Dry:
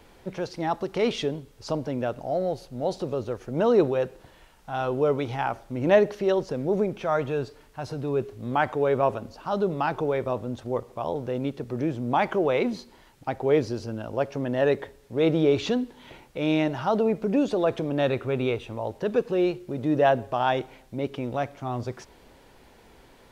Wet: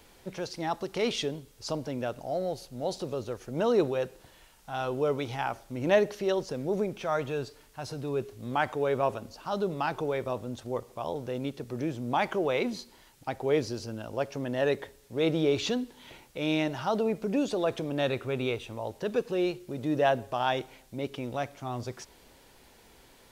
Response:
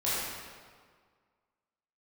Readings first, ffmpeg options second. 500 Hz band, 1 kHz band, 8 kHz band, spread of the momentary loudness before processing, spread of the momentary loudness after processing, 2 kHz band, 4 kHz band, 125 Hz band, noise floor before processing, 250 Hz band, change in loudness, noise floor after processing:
−5.0 dB, −4.5 dB, can't be measured, 11 LU, 11 LU, −2.5 dB, +0.5 dB, −5.0 dB, −54 dBFS, −5.0 dB, −4.5 dB, −58 dBFS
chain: -af "highshelf=frequency=3300:gain=10.5,volume=-5dB"

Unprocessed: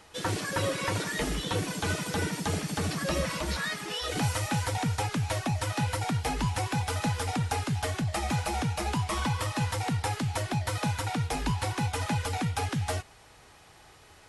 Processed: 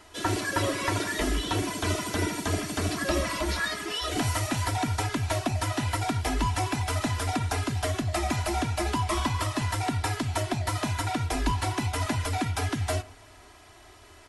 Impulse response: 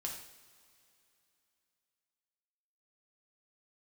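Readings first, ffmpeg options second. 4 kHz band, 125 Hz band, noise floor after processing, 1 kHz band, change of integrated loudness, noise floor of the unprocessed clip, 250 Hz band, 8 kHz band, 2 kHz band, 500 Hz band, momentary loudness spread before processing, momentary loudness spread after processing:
+2.0 dB, +0.5 dB, −52 dBFS, +2.0 dB, +2.0 dB, −55 dBFS, +2.0 dB, +2.0 dB, +2.0 dB, +2.5 dB, 2 LU, 2 LU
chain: -filter_complex "[0:a]aecho=1:1:3:0.77,asplit=2[link_01][link_02];[1:a]atrim=start_sample=2205,lowpass=2700[link_03];[link_02][link_03]afir=irnorm=-1:irlink=0,volume=-10.5dB[link_04];[link_01][link_04]amix=inputs=2:normalize=0"

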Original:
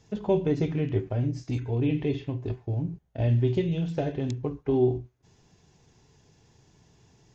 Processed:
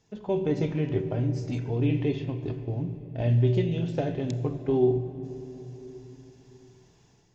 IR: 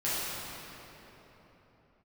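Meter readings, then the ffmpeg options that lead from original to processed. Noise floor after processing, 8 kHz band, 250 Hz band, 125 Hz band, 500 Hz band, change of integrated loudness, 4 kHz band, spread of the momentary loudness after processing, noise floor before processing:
−61 dBFS, can't be measured, 0.0 dB, +0.5 dB, +0.5 dB, 0.0 dB, +0.5 dB, 17 LU, −63 dBFS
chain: -filter_complex "[0:a]equalizer=frequency=71:width_type=o:width=1.8:gain=-6,asplit=2[link_01][link_02];[1:a]atrim=start_sample=2205,lowshelf=frequency=170:gain=9.5,adelay=32[link_03];[link_02][link_03]afir=irnorm=-1:irlink=0,volume=-21.5dB[link_04];[link_01][link_04]amix=inputs=2:normalize=0,dynaudnorm=framelen=140:gausssize=5:maxgain=7dB,volume=-6.5dB"

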